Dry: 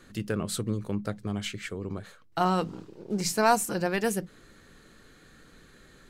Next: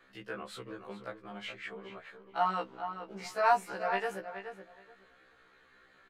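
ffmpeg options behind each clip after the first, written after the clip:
-filter_complex "[0:a]acrossover=split=510 3300:gain=0.141 1 0.112[a][b][c];[a][b][c]amix=inputs=3:normalize=0,asplit=2[d][e];[e]adelay=424,lowpass=f=2.7k:p=1,volume=-8.5dB,asplit=2[f][g];[g]adelay=424,lowpass=f=2.7k:p=1,volume=0.19,asplit=2[h][i];[i]adelay=424,lowpass=f=2.7k:p=1,volume=0.19[j];[d][f][h][j]amix=inputs=4:normalize=0,afftfilt=real='re*1.73*eq(mod(b,3),0)':imag='im*1.73*eq(mod(b,3),0)':win_size=2048:overlap=0.75"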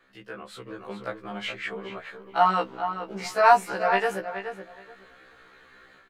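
-af "dynaudnorm=f=540:g=3:m=9.5dB"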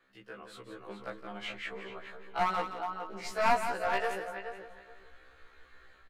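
-af "asubboost=boost=11:cutoff=52,aeval=exprs='clip(val(0),-1,0.0841)':c=same,aecho=1:1:170:0.355,volume=-7dB"

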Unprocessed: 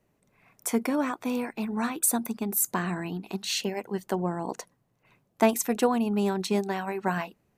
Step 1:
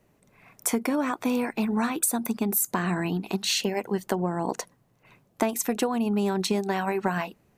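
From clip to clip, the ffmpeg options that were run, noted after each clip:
-af "acompressor=threshold=-28dB:ratio=10,volume=6.5dB"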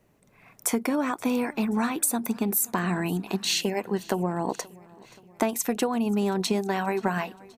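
-af "aecho=1:1:528|1056|1584|2112:0.0668|0.0388|0.0225|0.013"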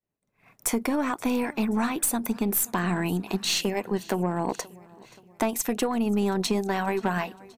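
-af "agate=range=-33dB:threshold=-49dB:ratio=3:detection=peak,aeval=exprs='0.355*(cos(1*acos(clip(val(0)/0.355,-1,1)))-cos(1*PI/2))+0.0316*(cos(5*acos(clip(val(0)/0.355,-1,1)))-cos(5*PI/2))+0.0224*(cos(6*acos(clip(val(0)/0.355,-1,1)))-cos(6*PI/2))':c=same,volume=-2.5dB"

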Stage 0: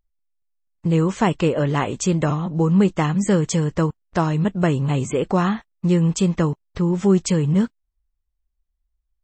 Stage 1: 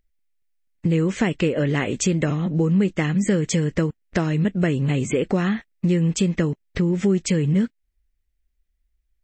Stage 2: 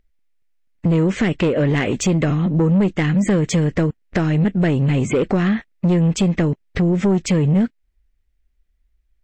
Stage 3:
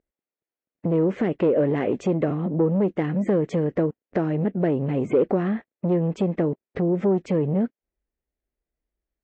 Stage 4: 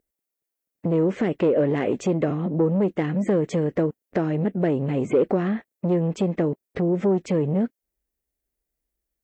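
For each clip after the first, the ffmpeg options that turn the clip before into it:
-af "equalizer=f=250:t=o:w=1:g=4,equalizer=f=500:t=o:w=1:g=3,equalizer=f=1k:t=o:w=1:g=-10,equalizer=f=2k:t=o:w=1:g=9,acompressor=threshold=-24dB:ratio=2.5,volume=3.5dB"
-af "highshelf=f=5.2k:g=-10,asoftclip=type=tanh:threshold=-17.5dB,volume=6.5dB"
-af "bandpass=f=480:t=q:w=1:csg=0"
-af "crystalizer=i=2:c=0"

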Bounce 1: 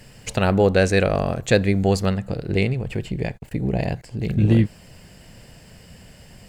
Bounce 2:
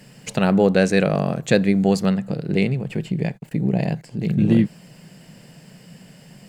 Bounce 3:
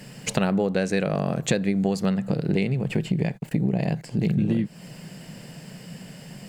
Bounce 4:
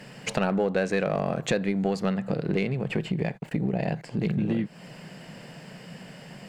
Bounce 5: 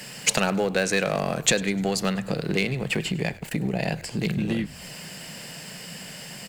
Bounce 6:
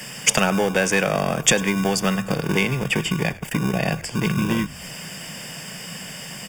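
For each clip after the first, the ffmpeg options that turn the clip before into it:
-af "lowshelf=f=110:t=q:w=3:g=-12.5,volume=-1dB"
-af "acompressor=threshold=-23dB:ratio=10,volume=4dB"
-filter_complex "[0:a]asplit=2[a][b];[b]highpass=f=720:p=1,volume=9dB,asoftclip=type=tanh:threshold=-5.5dB[c];[a][c]amix=inputs=2:normalize=0,lowpass=f=1.8k:p=1,volume=-6dB,asplit=2[d][e];[e]asoftclip=type=hard:threshold=-22dB,volume=-8.5dB[f];[d][f]amix=inputs=2:normalize=0,volume=-3dB"
-filter_complex "[0:a]acrossover=split=370[a][b];[b]crystalizer=i=6:c=0[c];[a][c]amix=inputs=2:normalize=0,asplit=4[d][e][f][g];[e]adelay=100,afreqshift=-75,volume=-20dB[h];[f]adelay=200,afreqshift=-150,volume=-27.1dB[i];[g]adelay=300,afreqshift=-225,volume=-34.3dB[j];[d][h][i][j]amix=inputs=4:normalize=0"
-filter_complex "[0:a]acrossover=split=390[a][b];[a]acrusher=samples=34:mix=1:aa=0.000001[c];[c][b]amix=inputs=2:normalize=0,asuperstop=centerf=4100:order=8:qfactor=5.5,volume=4.5dB"

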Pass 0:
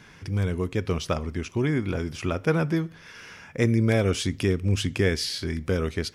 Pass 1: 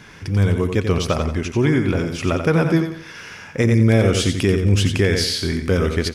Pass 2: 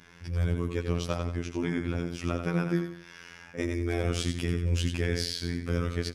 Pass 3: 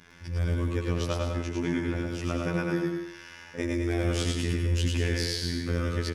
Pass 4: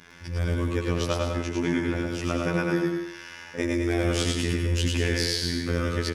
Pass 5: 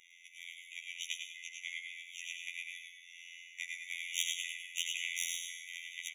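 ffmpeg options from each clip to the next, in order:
-filter_complex "[0:a]asplit=2[a][b];[b]aecho=0:1:89|178|267|356:0.447|0.152|0.0516|0.0176[c];[a][c]amix=inputs=2:normalize=0,alimiter=level_in=12.5dB:limit=-1dB:release=50:level=0:latency=1,volume=-5.5dB"
-af "afftfilt=real='hypot(re,im)*cos(PI*b)':imag='0':win_size=2048:overlap=0.75,volume=-8.5dB"
-af "aecho=1:1:107.9|207|244.9:0.708|0.282|0.282"
-af "lowshelf=f=170:g=-5,volume=4.5dB"
-af "aeval=exprs='0.562*(cos(1*acos(clip(val(0)/0.562,-1,1)))-cos(1*PI/2))+0.1*(cos(3*acos(clip(val(0)/0.562,-1,1)))-cos(3*PI/2))':c=same,afftfilt=real='re*eq(mod(floor(b*sr/1024/1900),2),1)':imag='im*eq(mod(floor(b*sr/1024/1900),2),1)':win_size=1024:overlap=0.75,volume=1dB"

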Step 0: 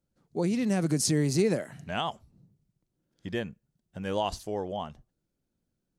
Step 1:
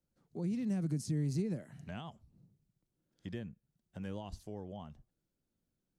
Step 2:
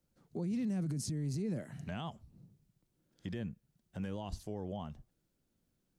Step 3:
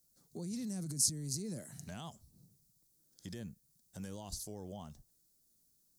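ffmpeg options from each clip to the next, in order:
-filter_complex "[0:a]acrossover=split=250[a][b];[b]acompressor=threshold=-46dB:ratio=3[c];[a][c]amix=inputs=2:normalize=0,volume=-4.5dB"
-af "alimiter=level_in=11.5dB:limit=-24dB:level=0:latency=1:release=29,volume=-11.5dB,volume=5.5dB"
-af "aexciter=amount=6.9:drive=6.1:freq=4.1k,volume=-5.5dB"

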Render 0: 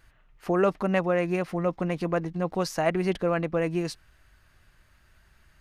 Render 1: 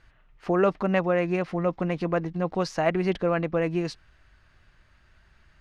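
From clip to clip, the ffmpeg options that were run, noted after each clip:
-af "lowpass=5.3k,volume=1dB"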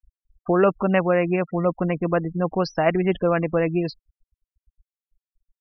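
-af "afftfilt=real='re*gte(hypot(re,im),0.0251)':imag='im*gte(hypot(re,im),0.0251)':win_size=1024:overlap=0.75,volume=4dB"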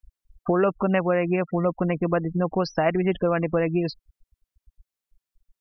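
-af "acompressor=threshold=-32dB:ratio=2,volume=6.5dB"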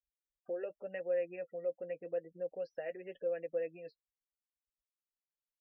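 -filter_complex "[0:a]flanger=delay=5.4:depth=2.8:regen=-41:speed=0.87:shape=triangular,asplit=3[a][b][c];[a]bandpass=f=530:t=q:w=8,volume=0dB[d];[b]bandpass=f=1.84k:t=q:w=8,volume=-6dB[e];[c]bandpass=f=2.48k:t=q:w=8,volume=-9dB[f];[d][e][f]amix=inputs=3:normalize=0,volume=-6dB"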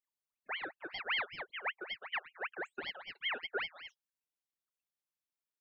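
-af "aeval=exprs='val(0)*sin(2*PI*1800*n/s+1800*0.5/5.2*sin(2*PI*5.2*n/s))':c=same,volume=1dB"

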